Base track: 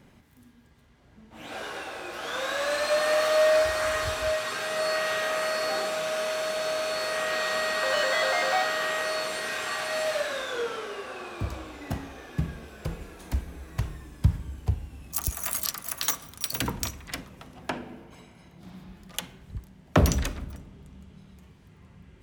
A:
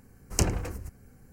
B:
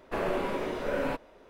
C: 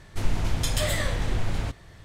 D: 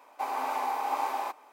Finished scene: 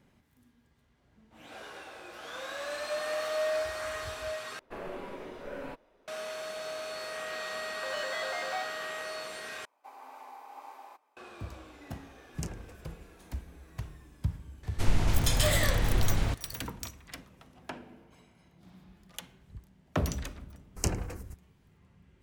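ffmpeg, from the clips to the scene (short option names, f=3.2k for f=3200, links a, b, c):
-filter_complex "[1:a]asplit=2[a][b];[0:a]volume=-9.5dB[c];[b]agate=range=-15dB:threshold=-43dB:ratio=16:release=100:detection=peak[d];[c]asplit=3[e][f][g];[e]atrim=end=4.594[h];[2:a]atrim=end=1.49,asetpts=PTS-STARTPTS,volume=-10.5dB[i];[f]atrim=start=6.076:end=9.654[j];[4:a]atrim=end=1.52,asetpts=PTS-STARTPTS,volume=-17.5dB[k];[g]atrim=start=11.166[l];[a]atrim=end=1.32,asetpts=PTS-STARTPTS,volume=-15.5dB,afade=t=in:d=0.004:c=hsin,afade=t=out:st=1.316:d=0.004:c=hsin,adelay=12040[m];[3:a]atrim=end=2.04,asetpts=PTS-STARTPTS,afade=t=in:d=0.004:c=hsin,afade=t=out:st=2.036:d=0.004:c=hsin,adelay=14630[n];[d]atrim=end=1.32,asetpts=PTS-STARTPTS,volume=-5dB,afade=t=in:d=0.004:c=hsin,afade=t=out:st=1.316:d=0.004:c=hsin,adelay=20450[o];[h][i]acrossfade=d=0.004:c1=hsin:c2=hsin[p];[p][j]acrossfade=d=0.004:c1=hsin:c2=hsin[q];[q][k]acrossfade=d=0.004:c1=hsin:c2=hsin[r];[r][l]acrossfade=d=0.004:c1=hsin:c2=hsin[s];[s][m][n][o]amix=inputs=4:normalize=0"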